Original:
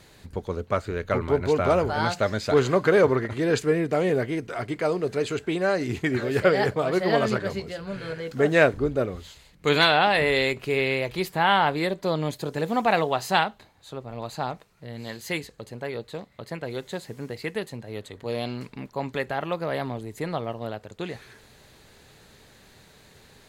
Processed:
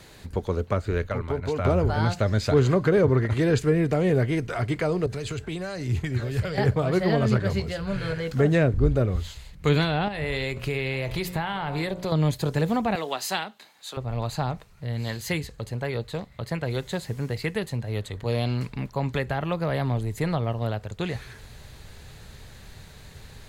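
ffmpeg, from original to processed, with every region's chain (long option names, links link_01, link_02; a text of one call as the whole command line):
ffmpeg -i in.wav -filter_complex "[0:a]asettb=1/sr,asplit=3[link_01][link_02][link_03];[link_01]atrim=end=1.074[link_04];[link_02]atrim=start=1.07:end=1.65,asetpts=PTS-STARTPTS,afade=type=in:duration=0.004:curve=qsin,afade=type=out:start_time=0.576:duration=0.004:curve=qsin,agate=range=-9dB:threshold=-28dB:ratio=16:release=100:detection=peak,bandreject=frequency=360:width=7.3,acompressor=threshold=-29dB:ratio=2.5:attack=3.2:release=140:knee=1:detection=peak[link_05];[link_03]atrim=start=1.646[link_06];[link_04][link_05]acrossfade=duration=0.004:curve1=hsin:curve2=qsin[link_07];[link_07][link_06]acrossfade=duration=0.004:curve1=qsin:curve2=hsin,asettb=1/sr,asplit=3[link_08][link_09][link_10];[link_08]atrim=end=5.064[link_11];[link_09]atrim=start=5.06:end=6.58,asetpts=PTS-STARTPTS,afade=type=in:duration=0.004:curve=qsin,afade=type=out:start_time=1.516:duration=0.004:curve=qsin,acrossover=split=120|3000[link_12][link_13][link_14];[link_13]acompressor=threshold=-35dB:ratio=4:attack=3.2:release=140:knee=2.83:detection=peak[link_15];[link_12][link_15][link_14]amix=inputs=3:normalize=0,adynamicequalizer=threshold=0.00282:dfrequency=1900:dqfactor=0.7:tfrequency=1900:tqfactor=0.7:attack=5:release=100:ratio=0.375:range=3:mode=cutabove:tftype=highshelf[link_16];[link_10]atrim=start=6.576[link_17];[link_11][link_16]acrossfade=duration=0.004:curve1=hsin:curve2=qsin[link_18];[link_18][link_17]acrossfade=duration=0.004:curve1=qsin:curve2=hsin,asettb=1/sr,asplit=3[link_19][link_20][link_21];[link_19]atrim=end=10.084[link_22];[link_20]atrim=start=10.08:end=12.12,asetpts=PTS-STARTPTS,afade=type=in:duration=0.004:curve=qsin,afade=type=out:start_time=2.036:duration=0.004:curve=qsin,bandreject=frequency=59.8:width_type=h:width=4,bandreject=frequency=119.6:width_type=h:width=4,bandreject=frequency=179.4:width_type=h:width=4,bandreject=frequency=239.2:width_type=h:width=4,bandreject=frequency=299:width_type=h:width=4,bandreject=frequency=358.8:width_type=h:width=4,bandreject=frequency=418.6:width_type=h:width=4,bandreject=frequency=478.4:width_type=h:width=4,bandreject=frequency=538.2:width_type=h:width=4,bandreject=frequency=598:width_type=h:width=4,bandreject=frequency=657.8:width_type=h:width=4,bandreject=frequency=717.6:width_type=h:width=4,bandreject=frequency=777.4:width_type=h:width=4,bandreject=frequency=837.2:width_type=h:width=4,bandreject=frequency=897:width_type=h:width=4,bandreject=frequency=956.8:width_type=h:width=4,bandreject=frequency=1016.6:width_type=h:width=4,bandreject=frequency=1076.4:width_type=h:width=4,bandreject=frequency=1136.2:width_type=h:width=4,bandreject=frequency=1196:width_type=h:width=4,bandreject=frequency=1255.8:width_type=h:width=4,bandreject=frequency=1315.6:width_type=h:width=4,bandreject=frequency=1375.4:width_type=h:width=4,bandreject=frequency=1435.2:width_type=h:width=4,bandreject=frequency=1495:width_type=h:width=4,acompressor=threshold=-29dB:ratio=2.5:attack=3.2:release=140:knee=1:detection=peak,aecho=1:1:854:0.0841,atrim=end_sample=89964[link_23];[link_21]atrim=start=12.116[link_24];[link_22][link_23]acrossfade=duration=0.004:curve1=hsin:curve2=qsin[link_25];[link_25][link_24]acrossfade=duration=0.004:curve1=qsin:curve2=hsin,asettb=1/sr,asplit=3[link_26][link_27][link_28];[link_26]atrim=end=12.954[link_29];[link_27]atrim=start=12.95:end=13.97,asetpts=PTS-STARTPTS,afade=type=in:duration=0.004:curve=qsin,afade=type=out:start_time=1.016:duration=0.004:curve=qsin,highpass=frequency=220:width=0.5412,highpass=frequency=220:width=1.3066,tiltshelf=frequency=1200:gain=-6[link_30];[link_28]atrim=start=13.966[link_31];[link_29][link_30]acrossfade=duration=0.004:curve1=hsin:curve2=qsin[link_32];[link_32][link_31]acrossfade=duration=0.004:curve1=qsin:curve2=hsin,asubboost=boost=4:cutoff=130,acrossover=split=420[link_33][link_34];[link_34]acompressor=threshold=-31dB:ratio=6[link_35];[link_33][link_35]amix=inputs=2:normalize=0,volume=4dB" out.wav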